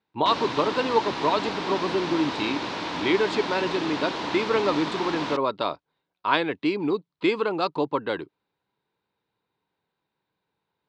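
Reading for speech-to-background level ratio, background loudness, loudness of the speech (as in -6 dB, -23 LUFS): 4.5 dB, -30.5 LUFS, -26.0 LUFS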